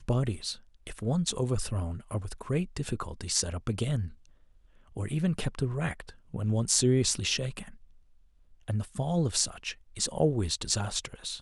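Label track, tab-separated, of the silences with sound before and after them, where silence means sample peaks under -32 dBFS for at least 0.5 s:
4.070000	4.970000	silence
7.620000	8.690000	silence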